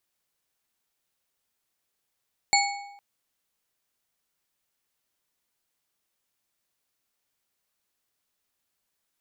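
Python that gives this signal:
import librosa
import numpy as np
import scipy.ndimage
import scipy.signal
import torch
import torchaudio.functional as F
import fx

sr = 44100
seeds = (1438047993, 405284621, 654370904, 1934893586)

y = fx.strike_metal(sr, length_s=0.46, level_db=-20, body='bar', hz=807.0, decay_s=0.94, tilt_db=0.5, modes=4)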